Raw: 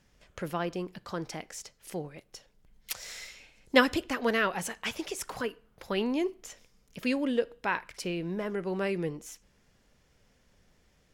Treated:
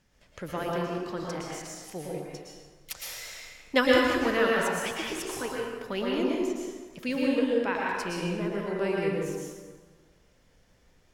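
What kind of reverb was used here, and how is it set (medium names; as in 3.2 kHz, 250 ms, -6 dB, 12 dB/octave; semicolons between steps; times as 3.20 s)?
plate-style reverb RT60 1.5 s, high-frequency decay 0.65×, pre-delay 100 ms, DRR -3.5 dB; trim -2.5 dB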